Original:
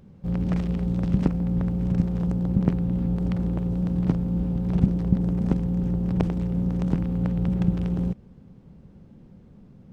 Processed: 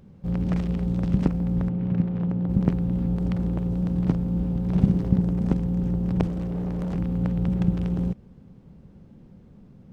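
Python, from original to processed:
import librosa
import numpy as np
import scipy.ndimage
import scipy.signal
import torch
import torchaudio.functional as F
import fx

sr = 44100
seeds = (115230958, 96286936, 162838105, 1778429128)

y = fx.cheby1_bandpass(x, sr, low_hz=120.0, high_hz=2700.0, order=2, at=(1.68, 2.48), fade=0.02)
y = fx.room_flutter(y, sr, wall_m=10.4, rt60_s=0.64, at=(4.69, 5.22))
y = fx.clip_hard(y, sr, threshold_db=-25.5, at=(6.26, 6.96))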